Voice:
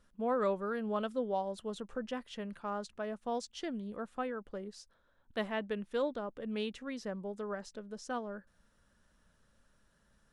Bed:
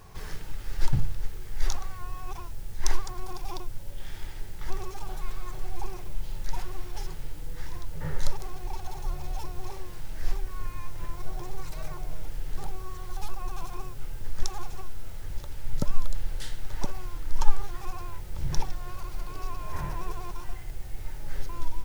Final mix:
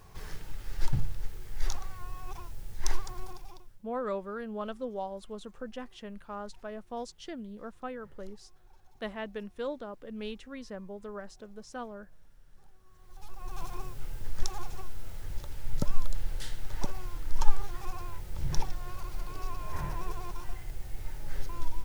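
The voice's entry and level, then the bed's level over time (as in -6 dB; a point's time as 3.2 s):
3.65 s, -2.0 dB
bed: 3.23 s -4 dB
3.87 s -25.5 dB
12.8 s -25.5 dB
13.61 s -2 dB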